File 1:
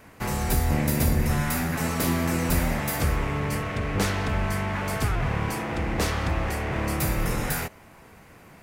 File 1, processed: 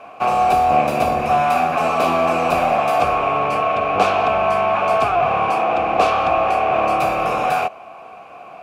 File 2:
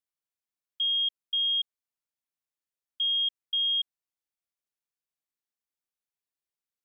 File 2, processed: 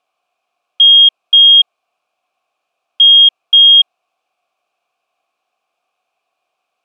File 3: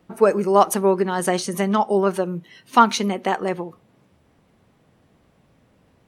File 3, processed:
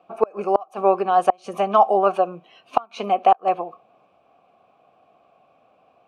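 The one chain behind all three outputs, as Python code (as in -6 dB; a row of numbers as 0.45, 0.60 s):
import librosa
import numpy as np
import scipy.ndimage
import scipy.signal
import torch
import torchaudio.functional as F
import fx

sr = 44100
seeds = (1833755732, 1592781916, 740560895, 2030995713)

y = fx.vowel_filter(x, sr, vowel='a')
y = fx.gate_flip(y, sr, shuts_db=-18.0, range_db=-31)
y = y * 10.0 ** (-2 / 20.0) / np.max(np.abs(y))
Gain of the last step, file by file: +23.0, +39.0, +14.5 dB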